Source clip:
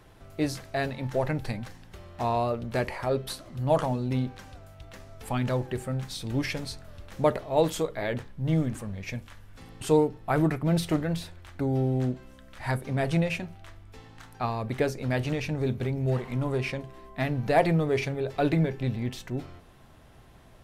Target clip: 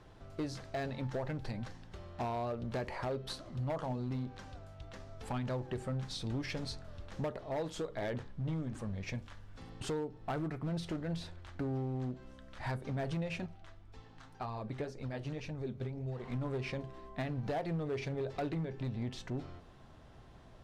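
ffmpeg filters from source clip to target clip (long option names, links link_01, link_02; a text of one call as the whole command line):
ffmpeg -i in.wav -filter_complex "[0:a]lowpass=6000,equalizer=frequency=2300:width_type=o:width=0.9:gain=-4,acompressor=threshold=-30dB:ratio=6,asettb=1/sr,asplit=3[link_01][link_02][link_03];[link_01]atrim=end=13.464[link_04];[link_02]atrim=start=13.46:end=16.2,asetpts=PTS-STARTPTS,afade=type=in:duration=0.004:curve=qsin,afade=type=out:start_time=2.736:duration=0.004:curve=qsin,flanger=delay=0.8:depth=6.8:regen=50:speed=1.9:shape=sinusoidal[link_05];[link_03]atrim=start=16.196[link_06];[link_04][link_05]acrossfade=duration=0.004:curve1=hsin:curve2=qsin[link_07];[link_07][link_06]acrossfade=duration=0.004:curve1=qsin:curve2=hsin,volume=28.5dB,asoftclip=hard,volume=-28.5dB,volume=-2.5dB" out.wav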